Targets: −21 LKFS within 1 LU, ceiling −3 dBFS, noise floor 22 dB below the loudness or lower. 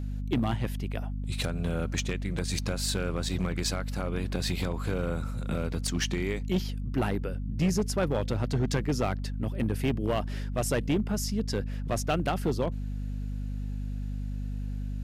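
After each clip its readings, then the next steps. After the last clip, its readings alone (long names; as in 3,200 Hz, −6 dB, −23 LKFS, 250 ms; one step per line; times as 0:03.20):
share of clipped samples 1.1%; peaks flattened at −20.5 dBFS; mains hum 50 Hz; hum harmonics up to 250 Hz; level of the hum −31 dBFS; integrated loudness −31.0 LKFS; sample peak −20.5 dBFS; target loudness −21.0 LKFS
→ clipped peaks rebuilt −20.5 dBFS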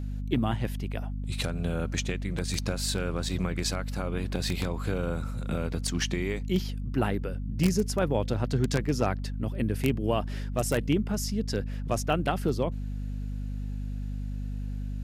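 share of clipped samples 0.0%; mains hum 50 Hz; hum harmonics up to 250 Hz; level of the hum −30 dBFS
→ mains-hum notches 50/100/150/200/250 Hz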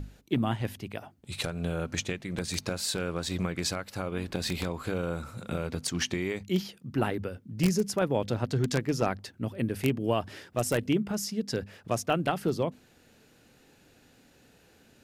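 mains hum none found; integrated loudness −31.0 LKFS; sample peak −10.0 dBFS; target loudness −21.0 LKFS
→ level +10 dB
brickwall limiter −3 dBFS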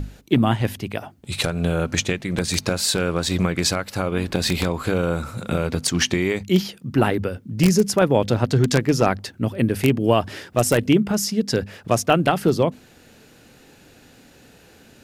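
integrated loudness −21.5 LKFS; sample peak −3.0 dBFS; background noise floor −51 dBFS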